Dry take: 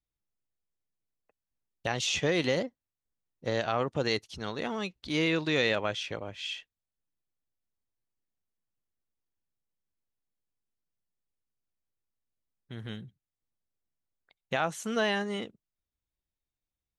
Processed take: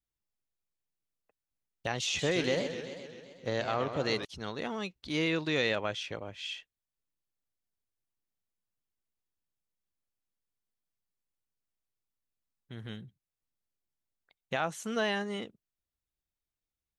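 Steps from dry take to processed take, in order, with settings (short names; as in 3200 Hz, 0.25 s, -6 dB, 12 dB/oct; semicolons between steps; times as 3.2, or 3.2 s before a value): 2.05–4.25 warbling echo 0.131 s, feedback 68%, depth 208 cents, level -9 dB; gain -2.5 dB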